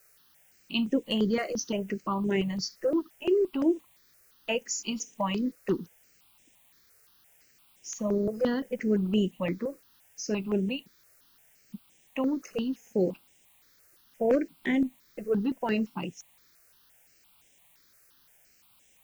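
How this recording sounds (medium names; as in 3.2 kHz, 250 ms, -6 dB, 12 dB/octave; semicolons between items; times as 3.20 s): a quantiser's noise floor 10-bit, dither triangular; notches that jump at a steady rate 5.8 Hz 920–4400 Hz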